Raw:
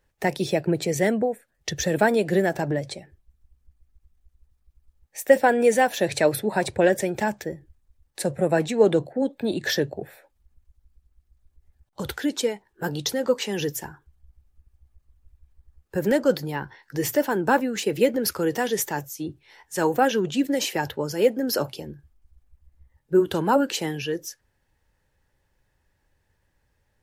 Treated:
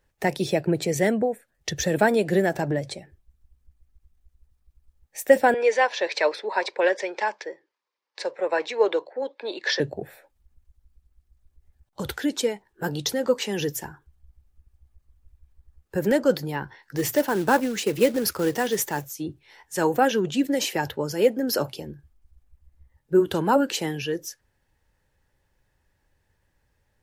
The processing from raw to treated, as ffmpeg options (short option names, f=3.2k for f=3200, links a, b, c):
-filter_complex "[0:a]asettb=1/sr,asplit=3[a][b][c];[a]atrim=end=5.544[d];[b]atrim=start=5.54:end=9.8,asetpts=PTS-STARTPTS,afade=t=in:d=0.004:c=qsin,afade=t=out:st=4.256:d=0.004:c=qsin,highpass=f=430:w=0.5412,highpass=f=430:w=1.3066,equalizer=f=700:t=q:w=4:g=-6,equalizer=f=1k:t=q:w=4:g=8,equalizer=f=2.2k:t=q:w=4:g=4,equalizer=f=4.9k:t=q:w=4:g=4,lowpass=f=5.5k:w=0.5412,lowpass=f=5.5k:w=1.3066[e];[c]atrim=start=9.796[f];[d][e]acrossfade=d=0.004:c1=hsin:c2=qsin[g];[g][f]acrossfade=d=0.004:c1=qsin:c2=hsin,asettb=1/sr,asplit=3[h][i][j];[h]atrim=end=16.974[k];[i]atrim=start=16.97:end=19.12,asetpts=PTS-STARTPTS,afade=t=in:d=0.004:c=qsin,afade=t=out:st=2.146:d=0.004:c=qsin,acrusher=bits=4:mode=log:mix=0:aa=0.000001[l];[j]atrim=start=19.116[m];[k][l]acrossfade=d=0.004:c1=hsin:c2=qsin[n];[n][m]acrossfade=d=0.004:c1=qsin:c2=hsin"